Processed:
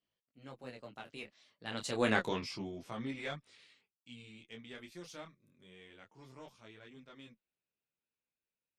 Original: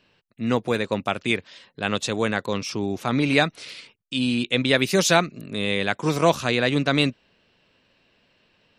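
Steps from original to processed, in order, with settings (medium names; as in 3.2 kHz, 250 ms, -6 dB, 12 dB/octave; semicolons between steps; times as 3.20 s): single-diode clipper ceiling -11 dBFS; Doppler pass-by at 2.15 s, 32 m/s, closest 4.4 m; detune thickener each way 10 cents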